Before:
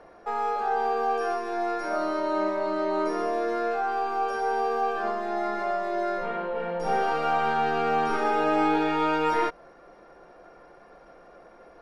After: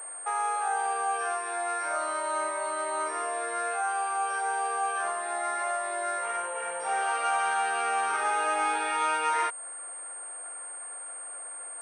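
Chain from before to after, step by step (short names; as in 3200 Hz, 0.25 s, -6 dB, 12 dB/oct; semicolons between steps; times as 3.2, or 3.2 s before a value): in parallel at +1 dB: compressor, threshold -34 dBFS, peak gain reduction 13.5 dB; on the sum: HPF 1000 Hz 12 dB/oct; pulse-width modulation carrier 8600 Hz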